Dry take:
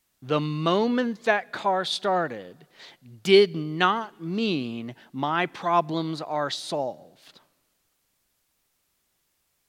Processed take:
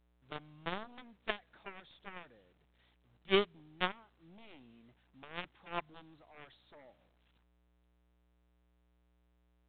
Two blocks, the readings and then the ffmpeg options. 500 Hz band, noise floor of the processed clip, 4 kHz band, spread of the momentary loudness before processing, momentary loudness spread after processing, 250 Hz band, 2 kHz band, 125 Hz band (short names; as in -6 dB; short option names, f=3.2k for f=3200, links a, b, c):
-17.0 dB, -72 dBFS, -13.5 dB, 12 LU, 26 LU, -19.5 dB, -13.5 dB, -20.0 dB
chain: -af "aeval=exprs='val(0)+0.00447*(sin(2*PI*60*n/s)+sin(2*PI*2*60*n/s)/2+sin(2*PI*3*60*n/s)/3+sin(2*PI*4*60*n/s)/4+sin(2*PI*5*60*n/s)/5)':c=same,aeval=exprs='0.631*(cos(1*acos(clip(val(0)/0.631,-1,1)))-cos(1*PI/2))+0.178*(cos(3*acos(clip(val(0)/0.631,-1,1)))-cos(3*PI/2))+0.01*(cos(4*acos(clip(val(0)/0.631,-1,1)))-cos(4*PI/2))+0.0224*(cos(7*acos(clip(val(0)/0.631,-1,1)))-cos(7*PI/2))':c=same,volume=-6dB" -ar 8000 -c:a pcm_alaw